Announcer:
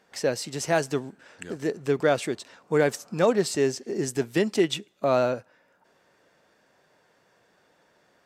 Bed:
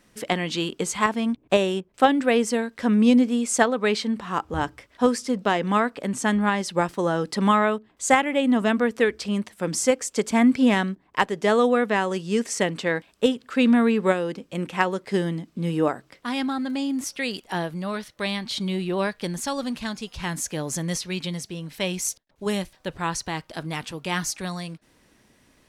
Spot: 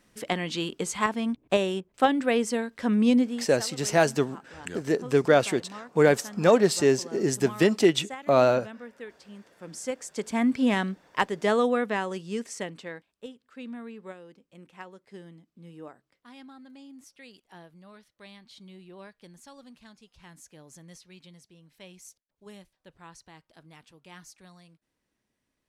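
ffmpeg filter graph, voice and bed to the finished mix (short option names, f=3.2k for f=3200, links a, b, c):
-filter_complex "[0:a]adelay=3250,volume=2.5dB[a];[1:a]volume=13.5dB,afade=t=out:st=3.21:d=0.27:silence=0.141254,afade=t=in:st=9.5:d=1.38:silence=0.133352,afade=t=out:st=11.49:d=1.69:silence=0.125893[b];[a][b]amix=inputs=2:normalize=0"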